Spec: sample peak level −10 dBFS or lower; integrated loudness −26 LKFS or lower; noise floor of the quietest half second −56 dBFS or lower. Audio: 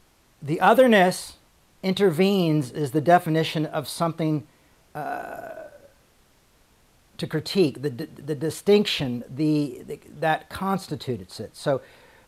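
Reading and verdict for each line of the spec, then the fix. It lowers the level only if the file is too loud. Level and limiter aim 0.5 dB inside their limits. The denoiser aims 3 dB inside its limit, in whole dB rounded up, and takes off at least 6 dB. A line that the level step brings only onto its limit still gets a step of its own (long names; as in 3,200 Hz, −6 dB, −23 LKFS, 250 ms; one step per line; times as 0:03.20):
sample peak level −6.0 dBFS: out of spec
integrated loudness −23.5 LKFS: out of spec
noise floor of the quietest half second −60 dBFS: in spec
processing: level −3 dB
brickwall limiter −10.5 dBFS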